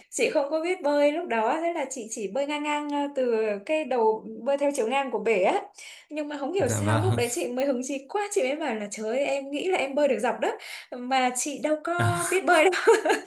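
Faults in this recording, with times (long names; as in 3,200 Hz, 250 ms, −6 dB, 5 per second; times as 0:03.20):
0:07.60: click −16 dBFS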